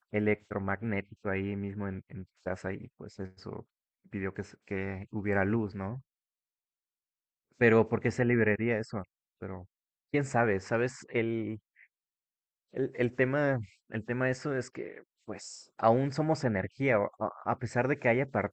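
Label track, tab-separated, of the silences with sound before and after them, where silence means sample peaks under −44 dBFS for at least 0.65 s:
5.990000	7.610000	silence
11.570000	12.740000	silence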